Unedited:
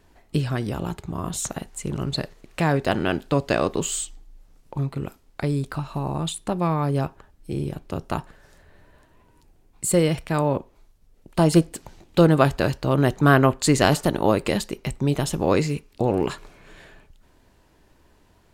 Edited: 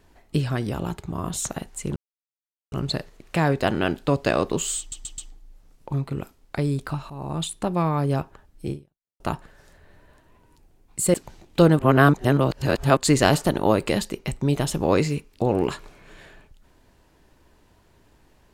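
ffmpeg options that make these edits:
-filter_complex "[0:a]asplit=10[a][b][c][d][e][f][g][h][i][j];[a]atrim=end=1.96,asetpts=PTS-STARTPTS,afade=t=out:st=1.956:d=0.004:c=hsin,apad=pad_dur=0.76[k];[b]atrim=start=1.96:end=4.162,asetpts=PTS-STARTPTS,afade=t=in:d=0.004:c=hsin[l];[c]atrim=start=4.028:end=4.162[m];[d]atrim=start=4.028:end=4.162[n];[e]atrim=start=4.028:end=5.95,asetpts=PTS-STARTPTS,afade=t=out:st=1.918:d=0.004:c=hsin:silence=0.199526[o];[f]atrim=start=5.95:end=8.05,asetpts=PTS-STARTPTS,afade=t=in:d=0.32:silence=0.199526,afade=t=out:st=1.61:d=0.49:c=exp[p];[g]atrim=start=8.05:end=9.992,asetpts=PTS-STARTPTS,afade=t=in:d=0.004:c=hsin[q];[h]atrim=start=11.728:end=12.382[r];[i]atrim=start=12.378:end=13.562,asetpts=PTS-STARTPTS,areverse[s];[j]atrim=start=13.558[t];[k][l]concat=n=2:v=0:a=1[u];[u][m]acrossfade=d=0.004:c1=hsin:c2=hsin[v];[v][n]acrossfade=d=0.004:c1=hsin:c2=hsin[w];[o][p][q]concat=n=3:v=0:a=1[x];[w][x]acrossfade=d=0.004:c1=hsin:c2=hsin[y];[y][r]acrossfade=d=0.004:c1=hsin:c2=hsin[z];[z][s]acrossfade=d=0.004:c1=hsin:c2=hsin[aa];[aa][t]acrossfade=d=0.004:c1=hsin:c2=hsin"

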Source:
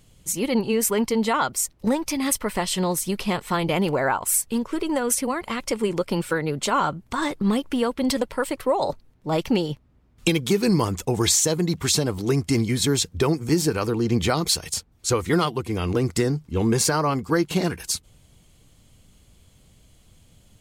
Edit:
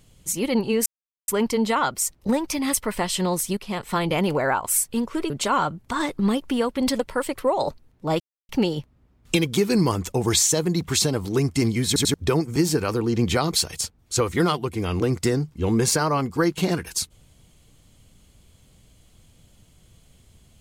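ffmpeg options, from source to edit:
-filter_complex "[0:a]asplit=8[a][b][c][d][e][f][g][h];[a]atrim=end=0.86,asetpts=PTS-STARTPTS,afade=t=out:st=0.856:d=0.004:c=hsin,apad=pad_dur=0.42[i];[b]atrim=start=0.86:end=3.15,asetpts=PTS-STARTPTS,afade=t=in:d=0.004:c=hsin,afade=t=out:st=2.286:d=0.004:c=hsin:silence=0.223872[j];[c]atrim=start=3.15:end=4.882,asetpts=PTS-STARTPTS,afade=t=in:d=0.34:silence=0.223872[k];[d]atrim=start=6.518:end=9.42,asetpts=PTS-STARTPTS,afade=t=out:st=2.898:d=0.004:c=hsin,apad=pad_dur=0.29[l];[e]atrim=start=9.42:end=12.892,asetpts=PTS-STARTPTS,afade=t=in:d=0.004:c=hsin[m];[f]atrim=start=12.798:end=12.892[n];[g]atrim=start=12.798:end=12.892[o];[h]atrim=start=13.068[p];[i][j][k]concat=n=3:v=0:a=1[q];[l][m]concat=n=2:v=0:a=1[r];[q][r]acrossfade=d=0.004:c1=hsin:c2=hsin[s];[s][n]acrossfade=d=0.004:c1=hsin:c2=hsin[t];[t][o]acrossfade=d=0.004:c1=hsin:c2=hsin[u];[u][p]acrossfade=d=0.004:c1=hsin:c2=hsin"

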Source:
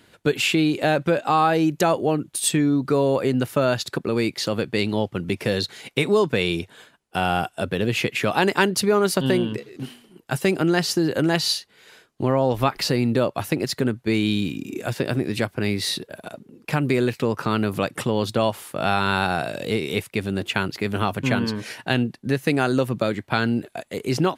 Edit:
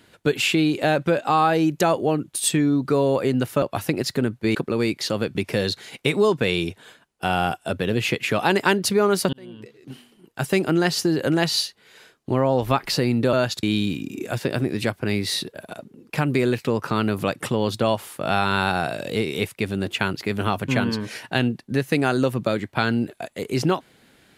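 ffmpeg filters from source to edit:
-filter_complex "[0:a]asplit=7[a][b][c][d][e][f][g];[a]atrim=end=3.622[h];[b]atrim=start=13.248:end=14.182[i];[c]atrim=start=3.918:end=4.722[j];[d]atrim=start=5.268:end=9.25,asetpts=PTS-STARTPTS,afade=t=out:st=3.978:d=0.004:c=hsin[k];[e]atrim=start=9.25:end=13.252,asetpts=PTS-STARTPTS,afade=t=in:d=1.21[l];[f]atrim=start=3.618:end=3.922[m];[g]atrim=start=14.178[n];[h][i]acrossfade=d=0.004:c1=hsin:c2=hsin[o];[o][j]acrossfade=d=0.004:c1=hsin:c2=hsin[p];[k][l]concat=n=2:v=0:a=1[q];[p][q]acrossfade=d=0.004:c1=hsin:c2=hsin[r];[r][m]acrossfade=d=0.004:c1=hsin:c2=hsin[s];[s][n]acrossfade=d=0.004:c1=hsin:c2=hsin"

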